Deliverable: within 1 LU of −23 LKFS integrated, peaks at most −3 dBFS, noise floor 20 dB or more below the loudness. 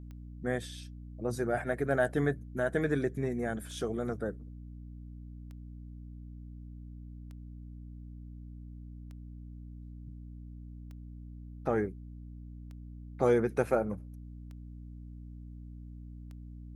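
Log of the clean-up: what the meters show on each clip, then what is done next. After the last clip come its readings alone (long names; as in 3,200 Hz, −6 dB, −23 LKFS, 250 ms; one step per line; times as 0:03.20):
number of clicks 10; mains hum 60 Hz; hum harmonics up to 300 Hz; level of the hum −43 dBFS; integrated loudness −32.5 LKFS; sample peak −14.0 dBFS; target loudness −23.0 LKFS
→ click removal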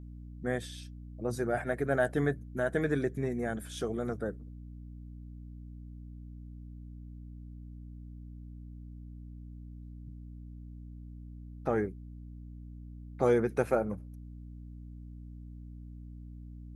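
number of clicks 0; mains hum 60 Hz; hum harmonics up to 300 Hz; level of the hum −43 dBFS
→ mains-hum notches 60/120/180/240/300 Hz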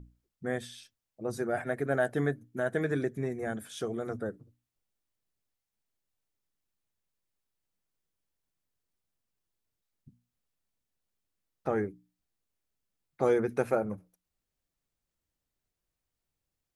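mains hum none found; integrated loudness −32.5 LKFS; sample peak −14.0 dBFS; target loudness −23.0 LKFS
→ level +9.5 dB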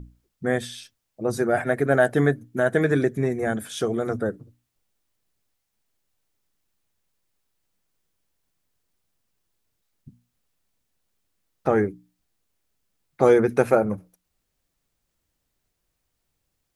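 integrated loudness −23.0 LKFS; sample peak −4.5 dBFS; background noise floor −78 dBFS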